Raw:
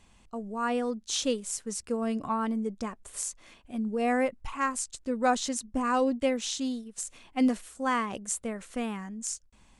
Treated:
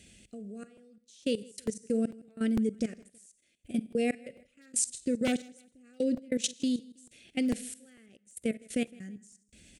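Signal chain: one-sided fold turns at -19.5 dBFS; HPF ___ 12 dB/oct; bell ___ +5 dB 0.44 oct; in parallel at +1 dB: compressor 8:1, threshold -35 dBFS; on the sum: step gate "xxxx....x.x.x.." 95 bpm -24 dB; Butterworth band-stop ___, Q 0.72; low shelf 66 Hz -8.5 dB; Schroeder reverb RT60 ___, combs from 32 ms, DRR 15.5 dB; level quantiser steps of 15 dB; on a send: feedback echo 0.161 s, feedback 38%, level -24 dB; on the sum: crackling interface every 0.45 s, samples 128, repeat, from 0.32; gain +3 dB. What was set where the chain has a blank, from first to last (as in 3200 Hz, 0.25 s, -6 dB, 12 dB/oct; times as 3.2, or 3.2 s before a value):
43 Hz, 9100 Hz, 1000 Hz, 0.45 s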